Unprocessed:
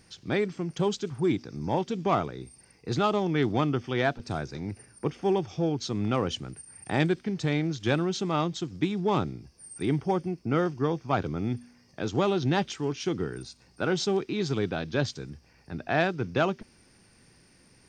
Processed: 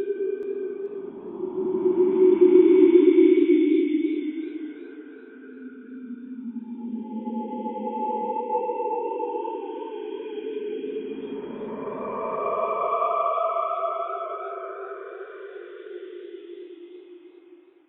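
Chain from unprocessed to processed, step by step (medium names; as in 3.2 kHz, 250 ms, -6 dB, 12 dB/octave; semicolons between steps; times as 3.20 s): formants replaced by sine waves; Paulstretch 12×, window 0.25 s, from 1.04 s; modulated delay 426 ms, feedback 33%, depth 119 cents, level -12 dB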